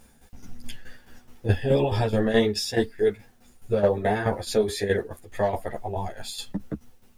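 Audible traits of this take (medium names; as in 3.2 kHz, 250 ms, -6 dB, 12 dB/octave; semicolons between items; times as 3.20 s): a quantiser's noise floor 12-bit, dither triangular; tremolo saw down 4.7 Hz, depth 70%; a shimmering, thickened sound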